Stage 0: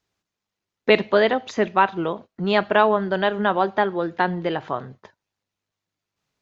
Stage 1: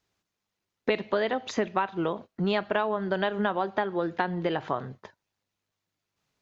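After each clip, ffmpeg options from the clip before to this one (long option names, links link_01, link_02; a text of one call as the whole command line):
ffmpeg -i in.wav -af "acompressor=threshold=-23dB:ratio=6" out.wav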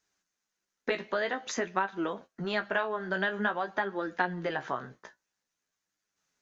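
ffmpeg -i in.wav -af "equalizer=frequency=100:width_type=o:width=0.67:gain=-12,equalizer=frequency=1600:width_type=o:width=0.67:gain=8,equalizer=frequency=6300:width_type=o:width=0.67:gain=11,flanger=delay=9:depth=8.6:regen=34:speed=0.5:shape=triangular,volume=-1.5dB" out.wav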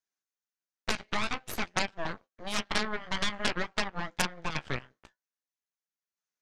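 ffmpeg -i in.wav -af "highpass=frequency=290:poles=1,aeval=exprs='0.237*(cos(1*acos(clip(val(0)/0.237,-1,1)))-cos(1*PI/2))+0.0944*(cos(3*acos(clip(val(0)/0.237,-1,1)))-cos(3*PI/2))+0.015*(cos(5*acos(clip(val(0)/0.237,-1,1)))-cos(5*PI/2))+0.0668*(cos(6*acos(clip(val(0)/0.237,-1,1)))-cos(6*PI/2))+0.0841*(cos(8*acos(clip(val(0)/0.237,-1,1)))-cos(8*PI/2))':channel_layout=same,volume=3.5dB" out.wav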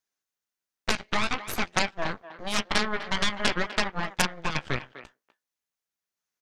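ffmpeg -i in.wav -filter_complex "[0:a]asplit=2[link_01][link_02];[link_02]adelay=250,highpass=300,lowpass=3400,asoftclip=type=hard:threshold=-15dB,volume=-13dB[link_03];[link_01][link_03]amix=inputs=2:normalize=0,volume=4.5dB" out.wav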